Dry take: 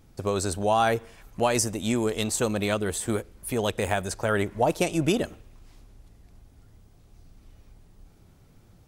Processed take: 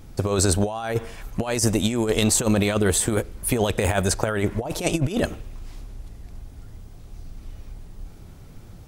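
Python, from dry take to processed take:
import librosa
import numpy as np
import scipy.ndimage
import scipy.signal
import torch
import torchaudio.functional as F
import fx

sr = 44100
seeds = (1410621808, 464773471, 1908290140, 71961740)

y = fx.low_shelf(x, sr, hz=66.0, db=6.0)
y = fx.over_compress(y, sr, threshold_db=-27.0, ratio=-0.5)
y = y * 10.0 ** (6.5 / 20.0)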